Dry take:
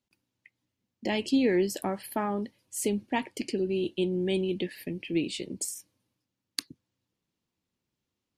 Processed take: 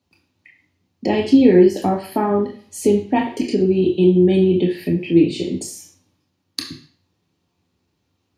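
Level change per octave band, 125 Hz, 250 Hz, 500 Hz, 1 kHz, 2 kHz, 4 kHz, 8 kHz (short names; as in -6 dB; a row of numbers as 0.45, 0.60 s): +15.5, +14.0, +13.5, +11.0, +5.5, +5.5, +2.5 dB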